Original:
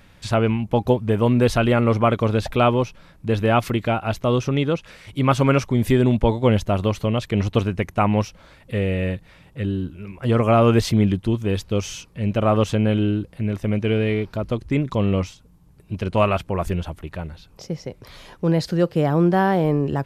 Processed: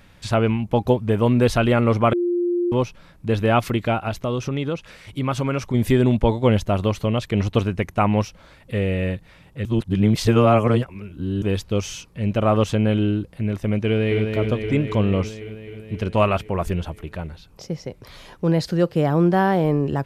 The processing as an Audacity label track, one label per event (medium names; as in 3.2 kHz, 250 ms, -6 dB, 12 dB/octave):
2.130000	2.720000	bleep 350 Hz -18 dBFS
4.080000	5.740000	compression 2:1, threshold -22 dBFS
9.650000	11.420000	reverse
13.850000	14.320000	echo throw 260 ms, feedback 75%, level -5 dB